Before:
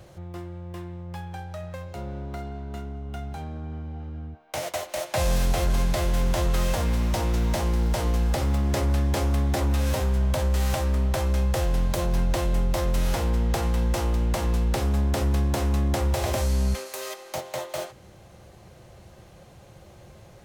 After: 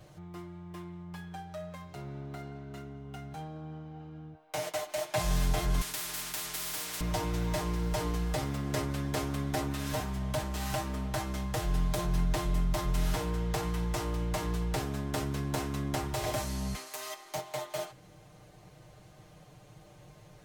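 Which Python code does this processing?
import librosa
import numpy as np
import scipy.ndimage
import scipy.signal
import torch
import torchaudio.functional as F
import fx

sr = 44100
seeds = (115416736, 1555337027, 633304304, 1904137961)

y = fx.spectral_comp(x, sr, ratio=10.0, at=(5.81, 7.01))
y = fx.notch(y, sr, hz=530.0, q=13.0)
y = y + 0.86 * np.pad(y, (int(6.6 * sr / 1000.0), 0))[:len(y)]
y = F.gain(torch.from_numpy(y), -7.0).numpy()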